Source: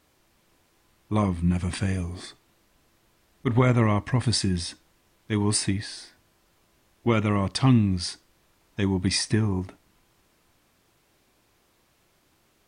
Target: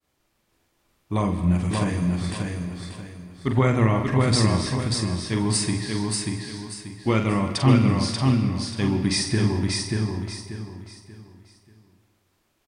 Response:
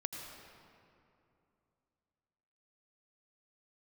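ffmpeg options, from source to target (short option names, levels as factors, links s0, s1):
-filter_complex "[0:a]agate=range=0.0224:threshold=0.00126:ratio=3:detection=peak,aecho=1:1:586|1172|1758|2344:0.708|0.227|0.0725|0.0232,asplit=2[s0][s1];[1:a]atrim=start_sample=2205,afade=t=out:st=0.43:d=0.01,atrim=end_sample=19404,adelay=45[s2];[s1][s2]afir=irnorm=-1:irlink=0,volume=0.596[s3];[s0][s3]amix=inputs=2:normalize=0"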